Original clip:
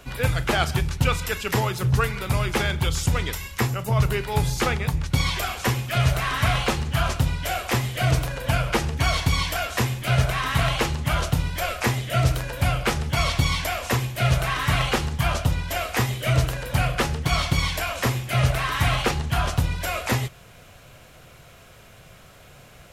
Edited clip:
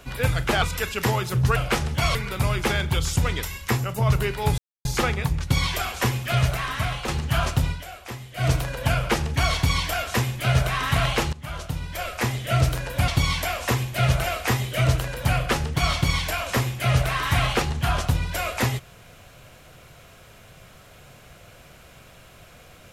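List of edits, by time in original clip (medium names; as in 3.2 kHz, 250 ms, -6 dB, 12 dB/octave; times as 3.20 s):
0.62–1.11 s: delete
4.48 s: insert silence 0.27 s
5.93–6.71 s: fade out, to -8.5 dB
7.34–8.11 s: dip -12.5 dB, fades 0.13 s
10.96–12.20 s: fade in, from -14.5 dB
12.71–13.30 s: move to 2.05 s
14.46–15.73 s: delete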